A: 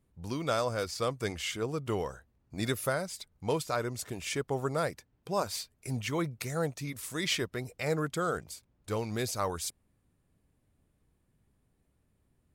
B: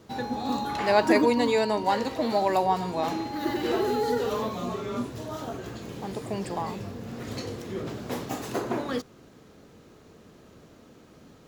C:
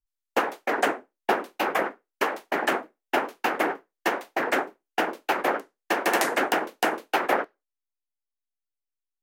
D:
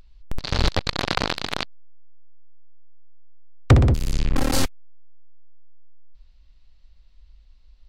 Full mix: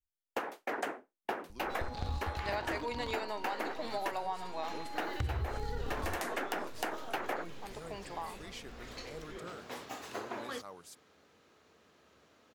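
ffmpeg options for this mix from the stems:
ffmpeg -i stem1.wav -i stem2.wav -i stem3.wav -i stem4.wav -filter_complex "[0:a]highpass=frequency=160:width=0.5412,highpass=frequency=160:width=1.3066,adelay=1250,volume=-17dB[link_01];[1:a]highpass=frequency=1500:poles=1,highshelf=frequency=5300:gain=-11.5,adelay=1600,volume=-2dB[link_02];[2:a]volume=-8.5dB,asplit=3[link_03][link_04][link_05];[link_03]atrim=end=4.12,asetpts=PTS-STARTPTS,afade=type=out:start_time=4.116:duration=0.004:curve=hsin[link_06];[link_04]atrim=start=4.12:end=4.88,asetpts=PTS-STARTPTS,volume=0[link_07];[link_05]atrim=start=4.88,asetpts=PTS-STARTPTS,afade=type=in:duration=0.004:curve=hsin[link_08];[link_06][link_07][link_08]concat=n=3:v=0:a=1[link_09];[3:a]acompressor=threshold=-25dB:ratio=5,lowshelf=frequency=380:gain=9,adelay=1500,volume=-15.5dB[link_10];[link_01][link_02][link_09][link_10]amix=inputs=4:normalize=0,equalizer=frequency=73:width_type=o:width=0.67:gain=14.5,acompressor=threshold=-32dB:ratio=6" out.wav

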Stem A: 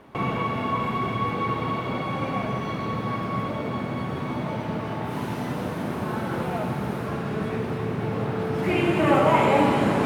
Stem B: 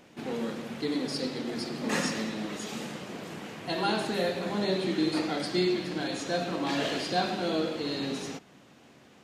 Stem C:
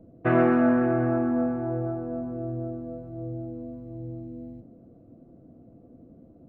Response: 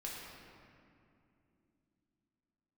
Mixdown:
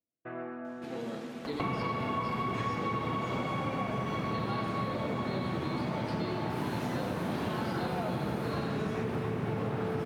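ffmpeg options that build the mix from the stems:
-filter_complex "[0:a]acompressor=mode=upward:threshold=-36dB:ratio=2.5,adelay=1450,volume=1dB[link_01];[1:a]acrossover=split=5000[link_02][link_03];[link_03]acompressor=threshold=-51dB:ratio=4:attack=1:release=60[link_04];[link_02][link_04]amix=inputs=2:normalize=0,adelay=650,volume=-8.5dB,asplit=2[link_05][link_06];[link_06]volume=-4.5dB[link_07];[2:a]agate=range=-25dB:threshold=-40dB:ratio=16:detection=peak,lowshelf=frequency=250:gain=-9.5,volume=-17dB[link_08];[3:a]atrim=start_sample=2205[link_09];[link_07][link_09]afir=irnorm=-1:irlink=0[link_10];[link_01][link_05][link_08][link_10]amix=inputs=4:normalize=0,acompressor=threshold=-30dB:ratio=5"

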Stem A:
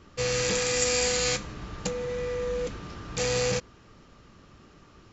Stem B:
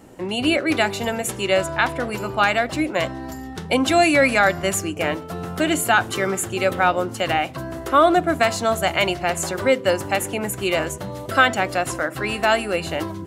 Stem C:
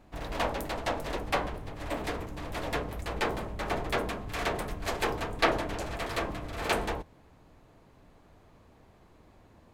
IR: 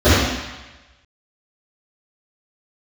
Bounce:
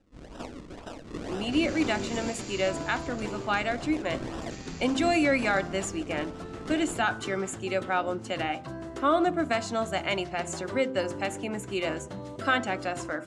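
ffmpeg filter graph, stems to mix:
-filter_complex "[0:a]highpass=frequency=1300:width=0.5412,highpass=frequency=1300:width=1.3066,adelay=950,volume=-5.5dB,asplit=2[link_01][link_02];[link_02]volume=-11.5dB[link_03];[1:a]bandreject=frequency=87.34:width_type=h:width=4,bandreject=frequency=174.68:width_type=h:width=4,bandreject=frequency=262.02:width_type=h:width=4,bandreject=frequency=349.36:width_type=h:width=4,bandreject=frequency=436.7:width_type=h:width=4,bandreject=frequency=524.04:width_type=h:width=4,bandreject=frequency=611.38:width_type=h:width=4,bandreject=frequency=698.72:width_type=h:width=4,bandreject=frequency=786.06:width_type=h:width=4,bandreject=frequency=873.4:width_type=h:width=4,bandreject=frequency=960.74:width_type=h:width=4,bandreject=frequency=1048.08:width_type=h:width=4,bandreject=frequency=1135.42:width_type=h:width=4,bandreject=frequency=1222.76:width_type=h:width=4,bandreject=frequency=1310.1:width_type=h:width=4,bandreject=frequency=1397.44:width_type=h:width=4,bandreject=frequency=1484.78:width_type=h:width=4,bandreject=frequency=1572.12:width_type=h:width=4,adelay=1100,volume=-9.5dB[link_04];[2:a]volume=-10.5dB,asplit=2[link_05][link_06];[link_06]volume=-13dB[link_07];[link_01][link_05]amix=inputs=2:normalize=0,acrusher=samples=39:mix=1:aa=0.000001:lfo=1:lforange=39:lforate=2,alimiter=level_in=6.5dB:limit=-24dB:level=0:latency=1:release=86,volume=-6.5dB,volume=0dB[link_08];[link_03][link_07]amix=inputs=2:normalize=0,aecho=0:1:381|762|1143|1524|1905|2286|2667|3048:1|0.53|0.281|0.149|0.0789|0.0418|0.0222|0.0117[link_09];[link_04][link_08][link_09]amix=inputs=3:normalize=0,lowpass=frequency=8400:width=0.5412,lowpass=frequency=8400:width=1.3066,equalizer=frequency=270:width=1.6:gain=6"

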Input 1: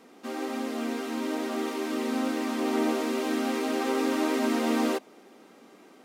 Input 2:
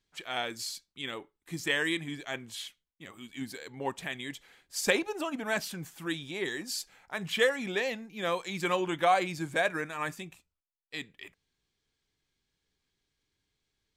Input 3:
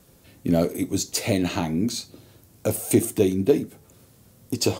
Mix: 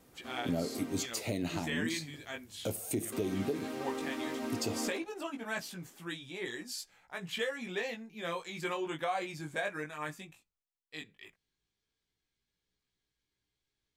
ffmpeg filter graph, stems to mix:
ffmpeg -i stem1.wav -i stem2.wav -i stem3.wav -filter_complex "[0:a]volume=-11.5dB,asplit=3[link_01][link_02][link_03];[link_01]atrim=end=1.06,asetpts=PTS-STARTPTS,afade=type=out:start_time=1.056:duration=0.004:curve=hsin[link_04];[link_02]atrim=start=1.06:end=3.12,asetpts=PTS-STARTPTS,volume=0[link_05];[link_03]atrim=start=3.12,asetpts=PTS-STARTPTS,afade=type=in:duration=0.004:curve=hsin[link_06];[link_04][link_05][link_06]concat=n=3:v=0:a=1[link_07];[1:a]flanger=delay=16.5:depth=3.6:speed=0.15,volume=-2.5dB[link_08];[2:a]volume=-9.5dB[link_09];[link_07][link_08][link_09]amix=inputs=3:normalize=0,alimiter=limit=-23.5dB:level=0:latency=1:release=154" out.wav

